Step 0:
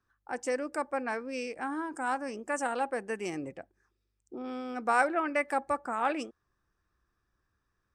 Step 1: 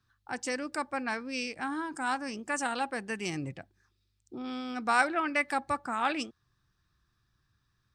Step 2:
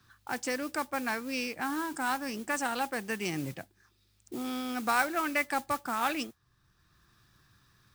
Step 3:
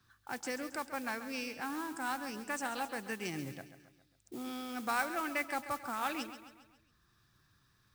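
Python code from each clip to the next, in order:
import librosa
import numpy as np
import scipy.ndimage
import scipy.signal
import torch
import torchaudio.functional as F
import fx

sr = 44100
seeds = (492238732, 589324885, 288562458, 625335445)

y1 = fx.graphic_eq(x, sr, hz=(125, 500, 4000), db=(11, -7, 11))
y1 = F.gain(torch.from_numpy(y1), 1.0).numpy()
y2 = fx.mod_noise(y1, sr, seeds[0], snr_db=15)
y2 = fx.band_squash(y2, sr, depth_pct=40)
y3 = fx.echo_feedback(y2, sr, ms=136, feedback_pct=50, wet_db=-12)
y3 = F.gain(torch.from_numpy(y3), -6.0).numpy()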